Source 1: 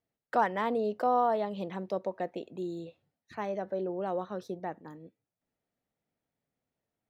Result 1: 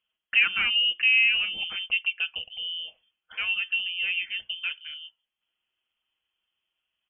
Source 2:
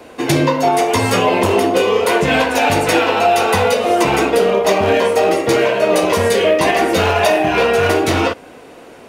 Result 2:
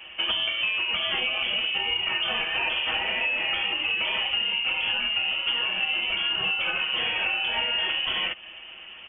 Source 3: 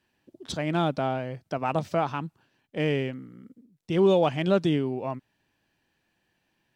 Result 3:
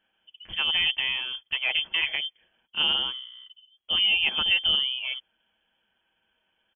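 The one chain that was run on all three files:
comb filter 6.8 ms, depth 51%
downward compressor 10 to 1, threshold −18 dBFS
voice inversion scrambler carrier 3,300 Hz
loudness normalisation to −24 LKFS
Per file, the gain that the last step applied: +4.5, −5.5, −0.5 decibels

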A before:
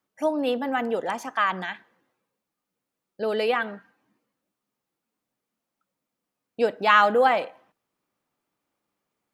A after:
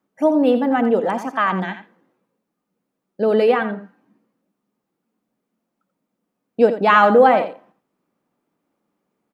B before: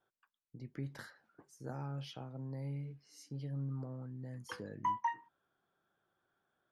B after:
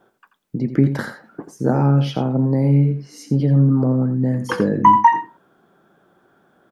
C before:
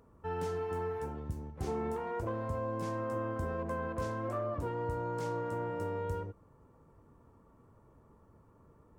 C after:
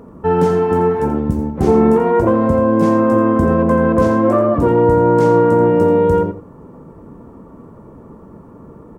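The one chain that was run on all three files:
drawn EQ curve 110 Hz 0 dB, 190 Hz +11 dB, 4,200 Hz −4 dB
on a send: single-tap delay 85 ms −10.5 dB
on the sum: normalise the peak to −1.5 dBFS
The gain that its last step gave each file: +2.0, +20.0, +17.0 decibels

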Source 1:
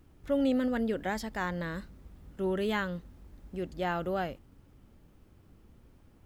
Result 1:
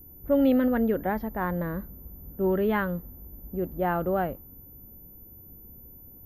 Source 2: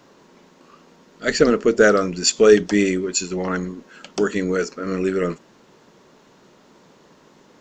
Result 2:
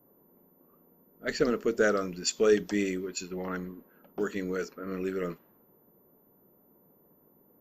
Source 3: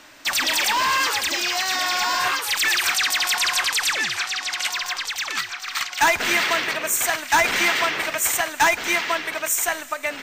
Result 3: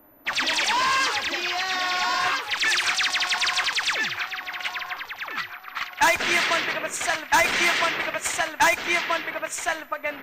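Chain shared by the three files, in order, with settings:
low-pass that shuts in the quiet parts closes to 650 Hz, open at −15 dBFS
steady tone 14,000 Hz −54 dBFS
normalise the peak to −12 dBFS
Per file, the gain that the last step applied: +6.0, −11.0, −1.5 decibels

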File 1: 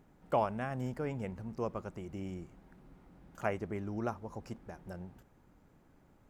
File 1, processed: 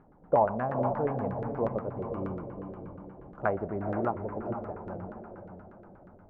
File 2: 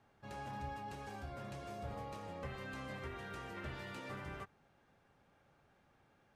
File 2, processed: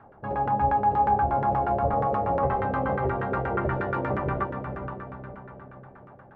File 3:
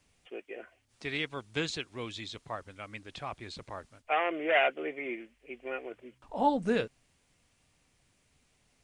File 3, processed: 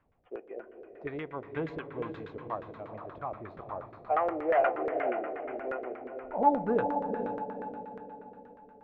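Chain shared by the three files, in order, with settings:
feedback delay with all-pass diffusion 476 ms, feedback 44%, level −6.5 dB
in parallel at −3.5 dB: gain into a clipping stage and back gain 23 dB
on the sum: spring reverb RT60 3.4 s, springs 31 ms, chirp 30 ms, DRR 12 dB
auto-filter low-pass saw down 8.4 Hz 460–1,500 Hz
normalise the peak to −12 dBFS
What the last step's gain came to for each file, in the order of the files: −1.5, +11.0, −6.5 decibels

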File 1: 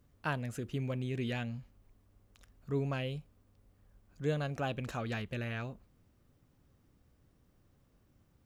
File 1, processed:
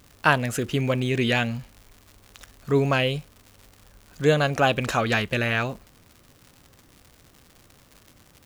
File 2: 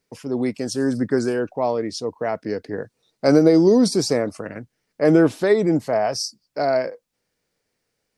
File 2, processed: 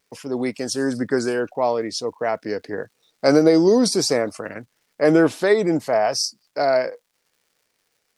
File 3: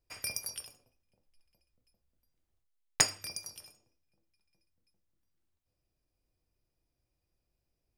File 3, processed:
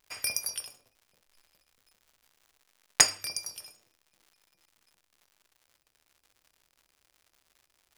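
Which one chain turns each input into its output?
pitch vibrato 0.55 Hz 8.9 cents
surface crackle 180 per second −55 dBFS
low-shelf EQ 350 Hz −9 dB
normalise the peak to −3 dBFS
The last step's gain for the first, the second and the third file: +18.0, +3.5, +6.0 decibels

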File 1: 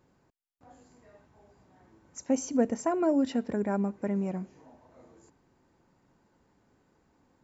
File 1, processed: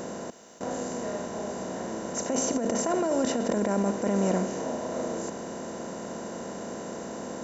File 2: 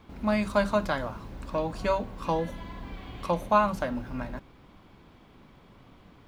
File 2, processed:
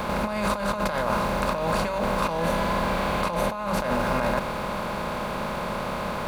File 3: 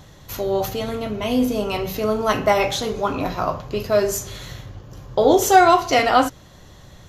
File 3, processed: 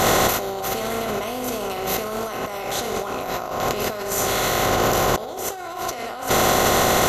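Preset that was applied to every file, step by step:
compressor on every frequency bin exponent 0.4
parametric band 290 Hz −10.5 dB 0.22 octaves
compressor whose output falls as the input rises −26 dBFS, ratio −1
high-shelf EQ 8,100 Hz +9 dB
level +1 dB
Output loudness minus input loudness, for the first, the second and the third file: −1.0, +2.5, −3.0 LU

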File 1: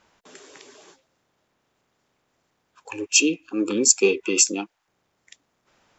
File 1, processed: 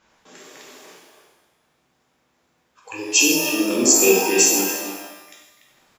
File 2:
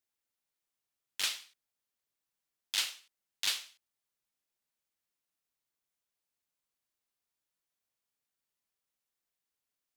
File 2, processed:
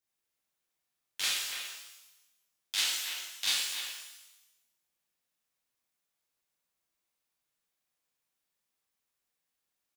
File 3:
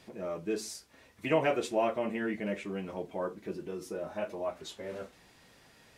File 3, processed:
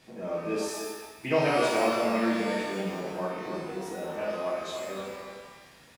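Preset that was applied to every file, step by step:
far-end echo of a speakerphone 290 ms, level −6 dB
reverb with rising layers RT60 1 s, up +12 semitones, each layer −8 dB, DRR −4 dB
level −2 dB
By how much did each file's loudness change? +3.5, +2.5, +4.5 LU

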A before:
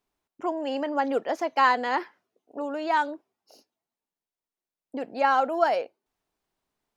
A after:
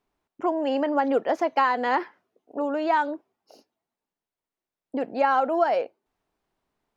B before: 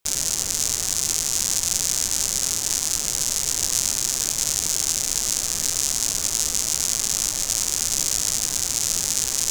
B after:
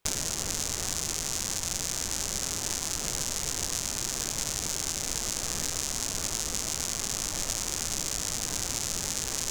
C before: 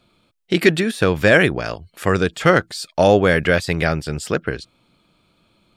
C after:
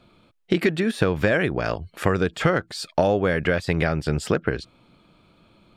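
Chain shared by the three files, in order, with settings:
downward compressor 6 to 1, threshold −22 dBFS
high-shelf EQ 3,600 Hz −10 dB
level +5 dB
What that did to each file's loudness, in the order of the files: +1.5, −9.0, −5.5 LU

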